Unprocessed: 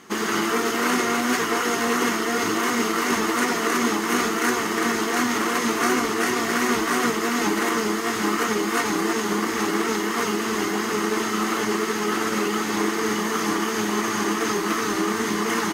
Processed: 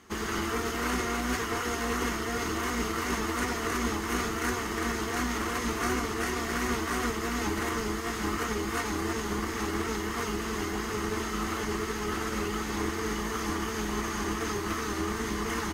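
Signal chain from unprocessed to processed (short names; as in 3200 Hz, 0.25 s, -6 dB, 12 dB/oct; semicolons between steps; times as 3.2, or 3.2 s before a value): octaver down 2 oct, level -2 dB; gain -8.5 dB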